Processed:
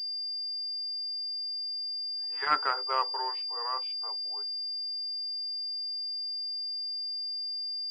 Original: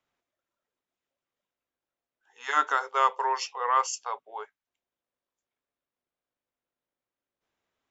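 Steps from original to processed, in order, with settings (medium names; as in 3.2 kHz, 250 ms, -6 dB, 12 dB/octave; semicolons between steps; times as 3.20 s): Doppler pass-by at 2.44 s, 10 m/s, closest 4.3 m; class-D stage that switches slowly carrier 4.8 kHz; trim -1.5 dB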